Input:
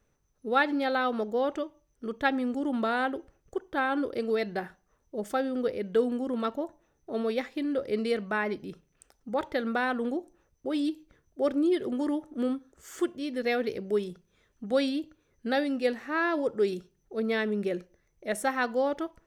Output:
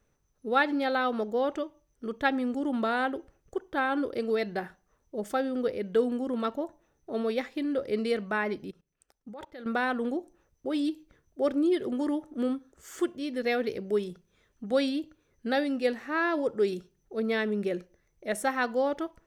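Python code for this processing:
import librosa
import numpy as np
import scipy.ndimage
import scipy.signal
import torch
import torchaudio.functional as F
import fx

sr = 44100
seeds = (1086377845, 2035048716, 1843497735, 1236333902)

y = fx.level_steps(x, sr, step_db=21, at=(8.7, 9.66))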